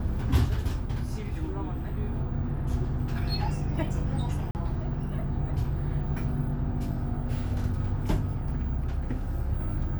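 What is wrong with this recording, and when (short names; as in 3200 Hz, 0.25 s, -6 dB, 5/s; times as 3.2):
4.51–4.55 gap 39 ms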